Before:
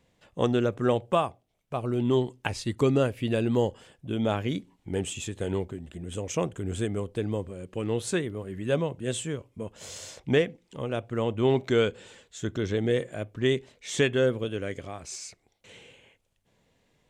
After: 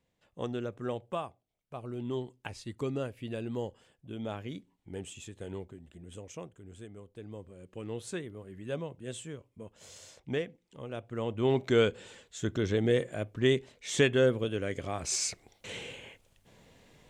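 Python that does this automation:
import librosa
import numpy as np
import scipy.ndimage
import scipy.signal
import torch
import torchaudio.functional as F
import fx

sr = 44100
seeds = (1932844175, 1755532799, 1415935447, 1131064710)

y = fx.gain(x, sr, db=fx.line((6.14, -11.0), (6.55, -18.0), (7.06, -18.0), (7.66, -10.0), (10.82, -10.0), (11.82, -1.0), (14.69, -1.0), (15.22, 9.0)))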